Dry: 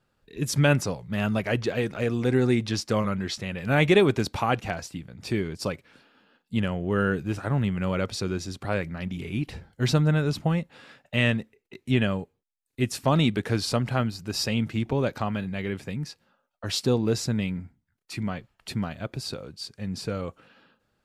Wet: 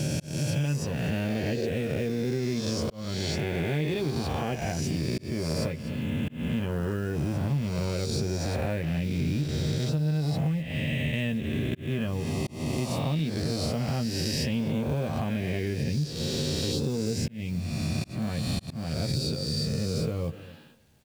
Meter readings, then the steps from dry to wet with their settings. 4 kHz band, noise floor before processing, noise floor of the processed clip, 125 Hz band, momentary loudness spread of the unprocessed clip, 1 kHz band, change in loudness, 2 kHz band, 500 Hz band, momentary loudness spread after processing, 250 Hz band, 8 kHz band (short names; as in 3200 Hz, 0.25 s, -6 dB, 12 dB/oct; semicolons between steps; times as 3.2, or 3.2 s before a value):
-1.0 dB, -76 dBFS, -43 dBFS, 0.0 dB, 13 LU, -7.0 dB, -2.5 dB, -6.5 dB, -4.0 dB, 3 LU, -2.0 dB, -0.5 dB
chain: spectral swells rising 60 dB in 2.12 s; companded quantiser 6-bit; echo 0.249 s -22.5 dB; vocal rider within 4 dB 0.5 s; bell 120 Hz +9 dB 1.8 oct; doubler 13 ms -6.5 dB; auto swell 0.491 s; compressor, threshold -23 dBFS, peak gain reduction 13 dB; bell 1300 Hz -10 dB 0.67 oct; gain -2 dB